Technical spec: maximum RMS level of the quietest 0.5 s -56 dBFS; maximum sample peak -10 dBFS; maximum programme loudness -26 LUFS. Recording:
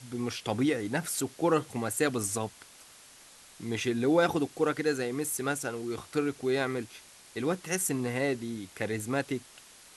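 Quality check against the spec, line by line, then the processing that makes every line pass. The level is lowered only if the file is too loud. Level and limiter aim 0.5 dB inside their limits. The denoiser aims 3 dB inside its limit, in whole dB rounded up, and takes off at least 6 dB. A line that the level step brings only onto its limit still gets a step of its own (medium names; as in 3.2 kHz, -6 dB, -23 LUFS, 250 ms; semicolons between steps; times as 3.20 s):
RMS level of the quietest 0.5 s -54 dBFS: fail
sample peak -12.5 dBFS: pass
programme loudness -30.5 LUFS: pass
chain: noise reduction 6 dB, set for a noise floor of -54 dBFS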